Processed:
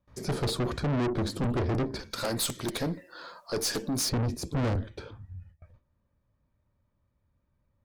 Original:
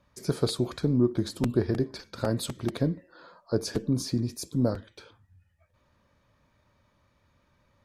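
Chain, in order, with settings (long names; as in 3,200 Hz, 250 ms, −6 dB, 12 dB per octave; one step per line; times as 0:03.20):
noise gate with hold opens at −54 dBFS
spectral tilt −2 dB per octave, from 0:02.10 +2.5 dB per octave, from 0:04.08 −3 dB per octave
tube saturation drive 33 dB, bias 0.4
level +7.5 dB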